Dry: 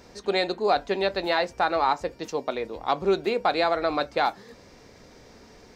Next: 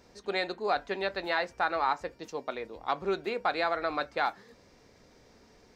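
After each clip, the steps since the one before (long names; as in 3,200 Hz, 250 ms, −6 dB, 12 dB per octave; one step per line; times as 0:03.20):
dynamic equaliser 1,600 Hz, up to +7 dB, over −39 dBFS, Q 1
level −8.5 dB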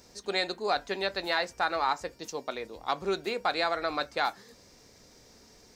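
bass and treble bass +1 dB, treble +12 dB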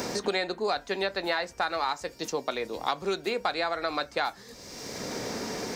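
multiband upward and downward compressor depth 100%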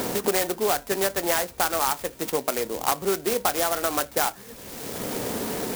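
converter with an unsteady clock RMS 0.097 ms
level +5 dB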